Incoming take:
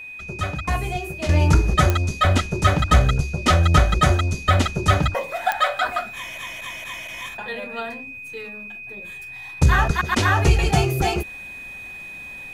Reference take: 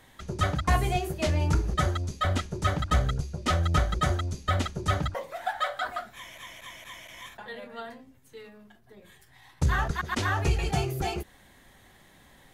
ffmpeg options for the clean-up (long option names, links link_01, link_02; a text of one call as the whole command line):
ffmpeg -i in.wav -af "adeclick=threshold=4,bandreject=frequency=2500:width=30,asetnsamples=nb_out_samples=441:pad=0,asendcmd='1.29 volume volume -9dB',volume=0dB" out.wav